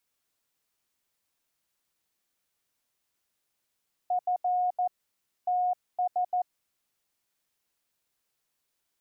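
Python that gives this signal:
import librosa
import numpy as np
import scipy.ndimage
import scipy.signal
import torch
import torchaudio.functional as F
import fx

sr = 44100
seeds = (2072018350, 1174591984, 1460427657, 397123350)

y = fx.morse(sr, text='F TS', wpm=14, hz=724.0, level_db=-23.5)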